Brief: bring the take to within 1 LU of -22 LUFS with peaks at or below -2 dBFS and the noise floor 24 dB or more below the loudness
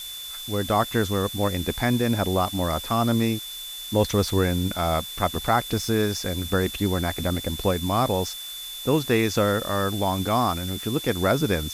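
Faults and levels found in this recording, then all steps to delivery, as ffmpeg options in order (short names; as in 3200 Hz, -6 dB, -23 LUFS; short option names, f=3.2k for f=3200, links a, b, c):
steady tone 3500 Hz; tone level -35 dBFS; noise floor -36 dBFS; noise floor target -49 dBFS; loudness -24.5 LUFS; peak -7.5 dBFS; loudness target -22.0 LUFS
-> -af "bandreject=f=3.5k:w=30"
-af "afftdn=nr=13:nf=-36"
-af "volume=2.5dB"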